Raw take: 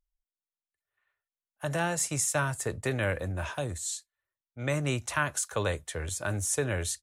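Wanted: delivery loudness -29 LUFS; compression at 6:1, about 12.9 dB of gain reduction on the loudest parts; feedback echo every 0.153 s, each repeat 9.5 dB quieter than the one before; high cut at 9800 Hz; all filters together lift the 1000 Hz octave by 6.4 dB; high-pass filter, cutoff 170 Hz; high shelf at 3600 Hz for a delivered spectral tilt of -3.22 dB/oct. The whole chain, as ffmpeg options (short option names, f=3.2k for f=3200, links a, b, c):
-af "highpass=170,lowpass=9.8k,equalizer=f=1k:t=o:g=8.5,highshelf=f=3.6k:g=-5.5,acompressor=threshold=-34dB:ratio=6,aecho=1:1:153|306|459|612:0.335|0.111|0.0365|0.012,volume=9dB"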